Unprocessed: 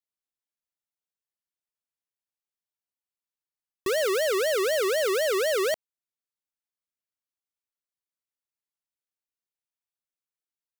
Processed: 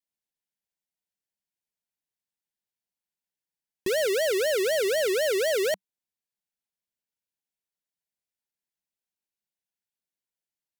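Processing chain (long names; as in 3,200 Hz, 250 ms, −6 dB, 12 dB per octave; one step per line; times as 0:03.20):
Butterworth band-reject 1,200 Hz, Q 3.2
pitch vibrato 1.5 Hz 26 cents
parametric band 190 Hz +8 dB 0.37 octaves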